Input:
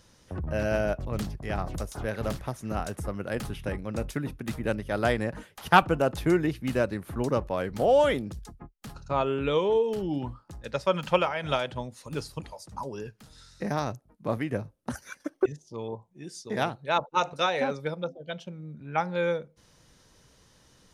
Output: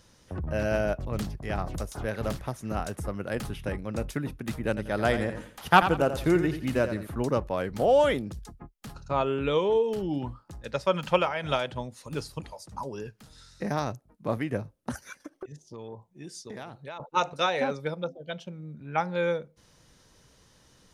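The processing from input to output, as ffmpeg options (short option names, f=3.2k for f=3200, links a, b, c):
-filter_complex "[0:a]asettb=1/sr,asplit=3[a][b][c];[a]atrim=end=4.684[d];[b]atrim=start=4.68:end=7.07,asetpts=PTS-STARTPTS,afade=t=in:d=0.004:c=qsin,afade=t=out:st=2.386:d=0.004:c=qsin,aecho=1:1:86|172|258:0.316|0.098|0.0304,atrim=end_sample=105399[e];[c]atrim=start=7.066[f];[d][e]acrossfade=d=0.004:c1=hsin:c2=qsin[g];[g][f]acrossfade=d=0.004:c1=qsin:c2=hsin,asettb=1/sr,asplit=3[h][i][j];[h]atrim=end=14.974[k];[i]atrim=start=14.97:end=17,asetpts=PTS-STARTPTS,afade=t=in:d=0.004:c=qsin,afade=t=out:st=2.026:d=0.004:c=qsin,acompressor=threshold=-36dB:ratio=8:attack=3.2:release=140:knee=1:detection=peak[l];[j]atrim=start=16.996[m];[k][l]acrossfade=d=0.004:c1=hsin:c2=qsin[n];[n][m]acrossfade=d=0.004:c1=qsin:c2=hsin"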